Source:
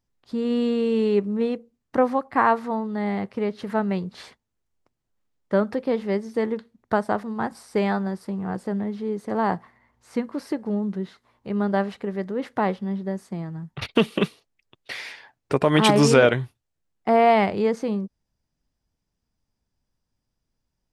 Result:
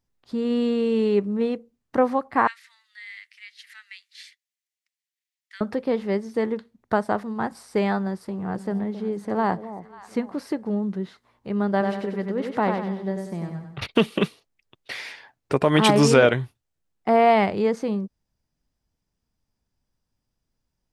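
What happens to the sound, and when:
0:02.47–0:05.61: elliptic high-pass filter 1,900 Hz, stop band 80 dB
0:08.01–0:10.39: delay that swaps between a low-pass and a high-pass 270 ms, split 860 Hz, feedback 53%, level −12 dB
0:11.71–0:13.87: repeating echo 95 ms, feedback 42%, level −5 dB

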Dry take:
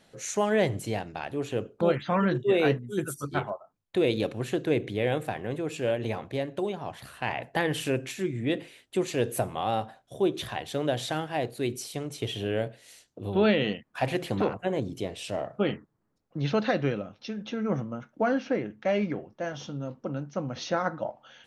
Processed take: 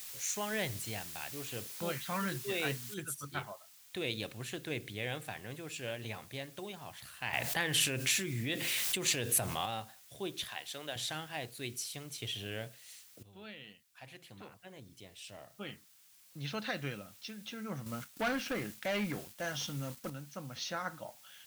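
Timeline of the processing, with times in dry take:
0:02.94: noise floor change −45 dB −58 dB
0:07.33–0:09.66: envelope flattener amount 70%
0:10.44–0:10.96: high-pass filter 450 Hz 6 dB per octave
0:13.23–0:16.83: fade in quadratic, from −16 dB
0:17.86–0:20.10: leveller curve on the samples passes 2
whole clip: guitar amp tone stack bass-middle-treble 5-5-5; level +5 dB

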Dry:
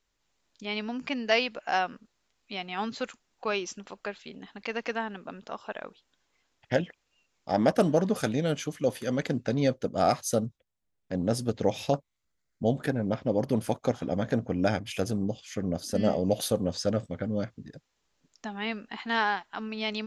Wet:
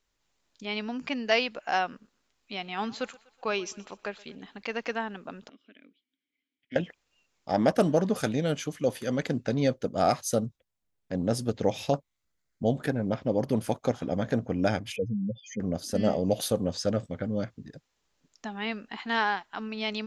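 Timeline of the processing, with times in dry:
0:01.88–0:04.58: feedback echo with a high-pass in the loop 123 ms, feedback 50%, high-pass 320 Hz, level −21 dB
0:05.49–0:06.76: formant filter i
0:14.96–0:15.60: expanding power law on the bin magnitudes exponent 3.7

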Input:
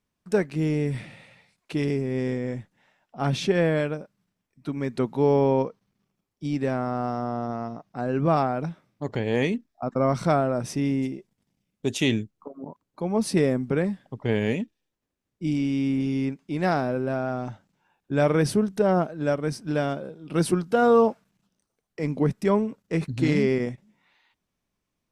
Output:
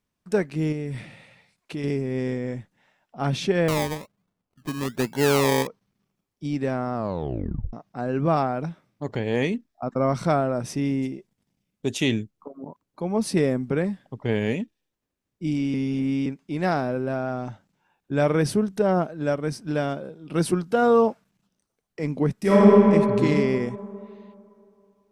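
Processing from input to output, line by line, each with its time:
0:00.72–0:01.84: downward compressor 3 to 1, threshold −28 dBFS
0:03.68–0:05.67: sample-and-hold swept by an LFO 25×, swing 60% 1.2 Hz
0:06.94: tape stop 0.79 s
0:15.74–0:16.26: reverse
0:22.39–0:22.81: thrown reverb, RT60 2.8 s, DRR −9 dB

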